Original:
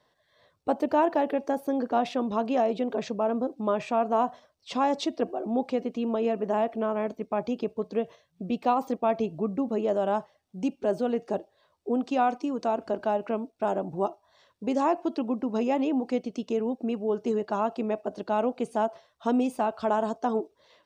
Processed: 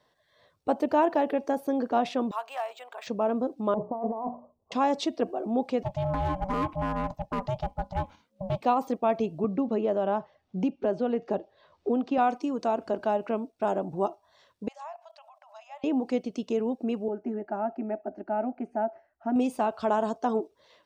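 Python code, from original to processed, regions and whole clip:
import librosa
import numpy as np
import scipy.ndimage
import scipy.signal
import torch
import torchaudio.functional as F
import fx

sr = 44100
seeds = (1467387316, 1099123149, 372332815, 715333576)

y = fx.chain(x, sr, fx.highpass(hz=840.0, slope=24),
    fx.resample_linear(factor=4), at=(2.31, 3.07))
y = fx.chain(y, sr, fx.steep_lowpass(hz=1100.0, slope=72),
    fx.hum_notches(base_hz=60, count=8),
    fx.over_compress(threshold_db=-31.0, ratio=-1.0), at=(3.74, 4.72))
y = fx.chain(y, sr, fx.low_shelf(hz=490.0, db=4.0),
    fx.clip_hard(threshold_db=-20.5),
    fx.ring_mod(carrier_hz=380.0), at=(5.83, 8.61))
y = fx.chain(y, sr, fx.air_absorb(metres=160.0),
    fx.band_squash(depth_pct=70), at=(9.44, 12.18))
y = fx.chain(y, sr, fx.level_steps(step_db=19),
    fx.brickwall_highpass(low_hz=570.0), at=(14.68, 15.84))
y = fx.chain(y, sr, fx.bessel_lowpass(hz=1500.0, order=2),
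    fx.fixed_phaser(hz=720.0, stages=8), at=(17.08, 19.36))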